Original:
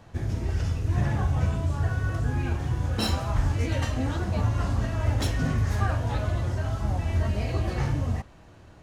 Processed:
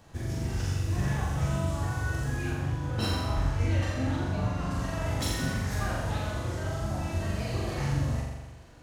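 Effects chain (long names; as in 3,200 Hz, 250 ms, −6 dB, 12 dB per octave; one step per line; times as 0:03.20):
high-shelf EQ 4,600 Hz +10.5 dB, from 0:02.51 −3 dB, from 0:04.71 +7.5 dB
flutter between parallel walls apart 7.3 metres, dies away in 1.1 s
level −5.5 dB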